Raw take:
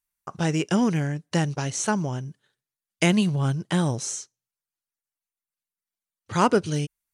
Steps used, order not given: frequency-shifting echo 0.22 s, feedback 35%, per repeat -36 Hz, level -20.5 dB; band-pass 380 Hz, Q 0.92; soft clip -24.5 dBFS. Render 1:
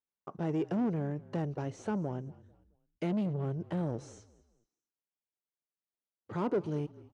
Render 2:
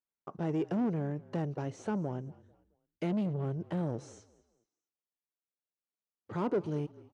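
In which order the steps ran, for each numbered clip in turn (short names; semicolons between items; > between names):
soft clip > band-pass > frequency-shifting echo; soft clip > frequency-shifting echo > band-pass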